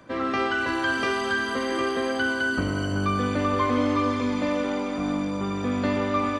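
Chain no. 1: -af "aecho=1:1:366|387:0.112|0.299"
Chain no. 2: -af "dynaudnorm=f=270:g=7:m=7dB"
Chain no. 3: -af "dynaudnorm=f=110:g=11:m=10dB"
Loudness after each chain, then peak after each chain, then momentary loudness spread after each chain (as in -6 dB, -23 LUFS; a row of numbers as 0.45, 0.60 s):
-24.5, -19.5, -16.5 LUFS; -11.5, -5.5, -3.5 dBFS; 3, 6, 4 LU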